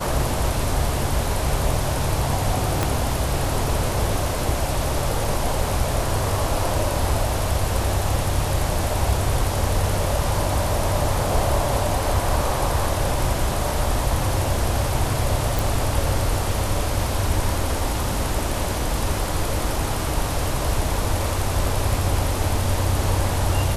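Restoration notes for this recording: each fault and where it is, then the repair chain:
2.83 s: pop -5 dBFS
15.59 s: pop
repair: de-click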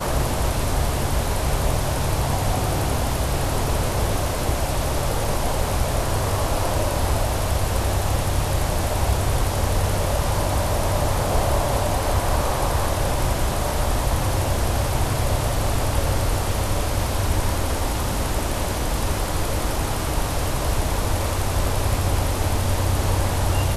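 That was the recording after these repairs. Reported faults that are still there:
2.83 s: pop

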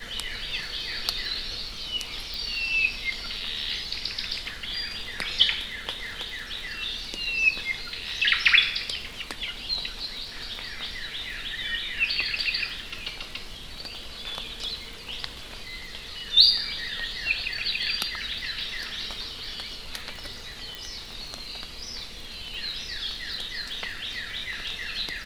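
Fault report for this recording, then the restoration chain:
crackle 60 per s -37 dBFS
2.34 s: pop
20.75 s: pop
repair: de-click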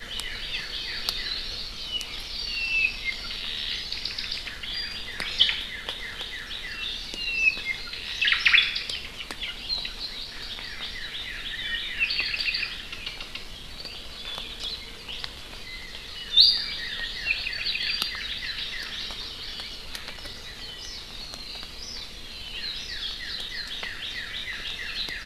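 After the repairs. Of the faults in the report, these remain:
nothing left

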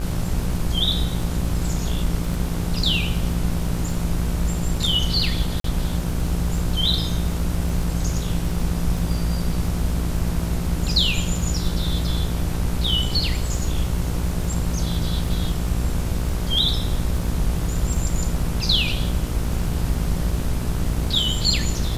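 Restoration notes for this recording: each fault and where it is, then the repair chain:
buzz 60 Hz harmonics 26 -26 dBFS
crackle 28 per s -29 dBFS
5.60–5.64 s: dropout 43 ms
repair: de-click; de-hum 60 Hz, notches 26; interpolate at 5.60 s, 43 ms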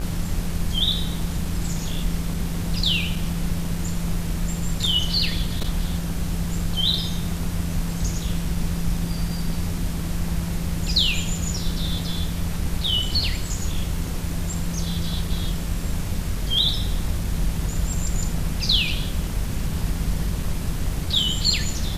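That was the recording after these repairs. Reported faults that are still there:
nothing left

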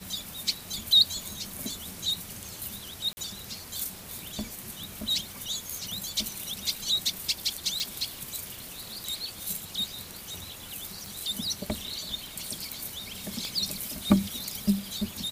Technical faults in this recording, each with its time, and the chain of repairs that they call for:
3.13–3.17 s: dropout 40 ms
7.80 s: pop
11.06 s: pop
13.45 s: pop -23 dBFS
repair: de-click; interpolate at 3.13 s, 40 ms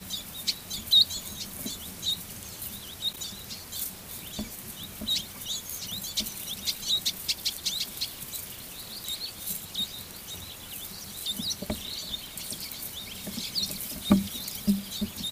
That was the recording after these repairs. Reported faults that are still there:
nothing left

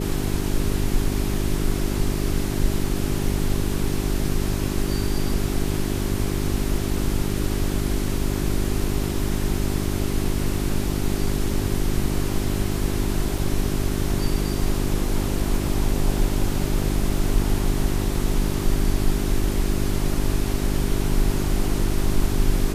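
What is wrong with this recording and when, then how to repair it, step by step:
hum 50 Hz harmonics 8 -26 dBFS
13.38 s: dropout 2.6 ms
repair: de-hum 50 Hz, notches 8; interpolate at 13.38 s, 2.6 ms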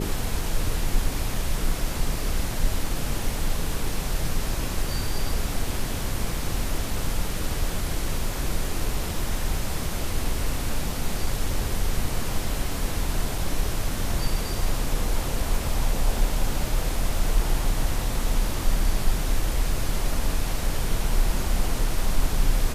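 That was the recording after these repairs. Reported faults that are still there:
nothing left

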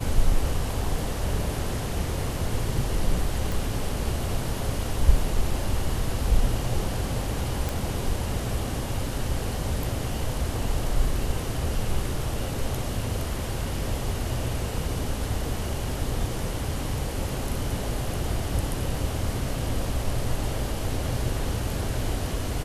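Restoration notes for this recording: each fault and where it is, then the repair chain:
3.52 s: pop
7.69 s: pop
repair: de-click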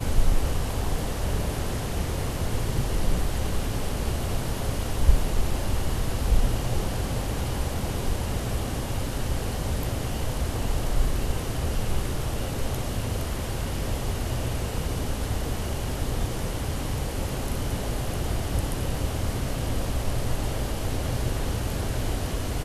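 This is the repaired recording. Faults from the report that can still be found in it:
nothing left

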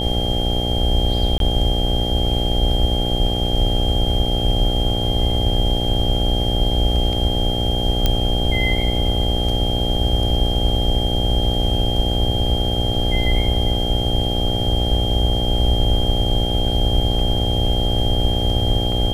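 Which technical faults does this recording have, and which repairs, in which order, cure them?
buzz 60 Hz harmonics 14 -23 dBFS
whine 3.2 kHz -24 dBFS
1.38–1.40 s: dropout 22 ms
8.06 s: pop -3 dBFS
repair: de-click; band-stop 3.2 kHz, Q 30; de-hum 60 Hz, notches 14; interpolate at 1.38 s, 22 ms

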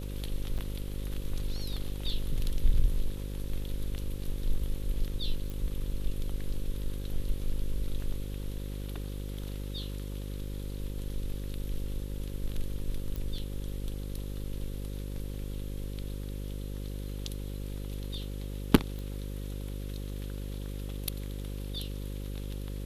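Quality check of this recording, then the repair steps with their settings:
buzz 50 Hz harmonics 11 -37 dBFS
0.58–0.59 s: dropout 6.8 ms
5.50 s: pop
13.16 s: pop
18.99 s: pop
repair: de-click; de-hum 50 Hz, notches 11; interpolate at 0.58 s, 6.8 ms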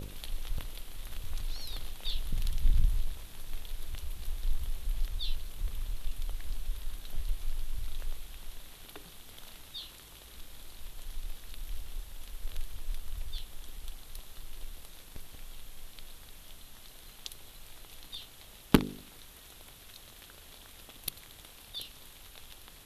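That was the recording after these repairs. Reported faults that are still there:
nothing left

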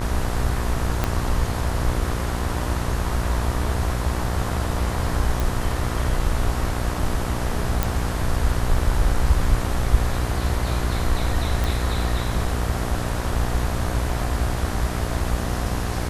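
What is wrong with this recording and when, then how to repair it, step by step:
buzz 60 Hz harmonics 33 -27 dBFS
1.04 s: pop -7 dBFS
5.40 s: pop
7.83 s: pop
11.64 s: pop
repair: de-click; de-hum 60 Hz, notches 33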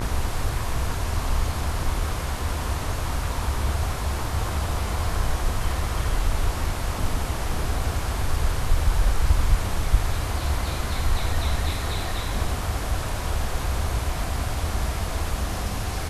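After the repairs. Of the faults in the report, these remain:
1.04 s: pop

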